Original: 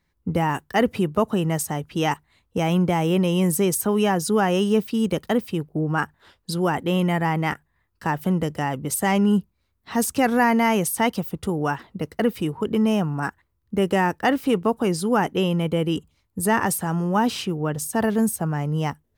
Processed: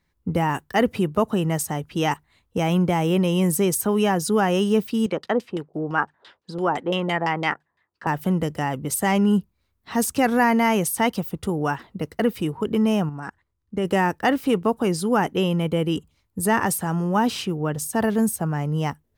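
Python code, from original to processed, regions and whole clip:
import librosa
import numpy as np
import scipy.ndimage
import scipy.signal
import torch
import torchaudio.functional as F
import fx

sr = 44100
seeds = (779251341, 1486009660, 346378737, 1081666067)

y = fx.chain(x, sr, fx.highpass(hz=110.0, slope=12),
    fx.bass_treble(bass_db=-8, treble_db=14),
    fx.filter_lfo_lowpass(shape='saw_down', hz=5.9, low_hz=560.0, high_hz=4500.0, q=1.4), at=(5.06, 8.07))
y = fx.chain(y, sr, fx.lowpass(hz=8900.0, slope=12),
    fx.notch(hz=2600.0, q=27.0),
    fx.level_steps(step_db=11), at=(13.09, 13.85))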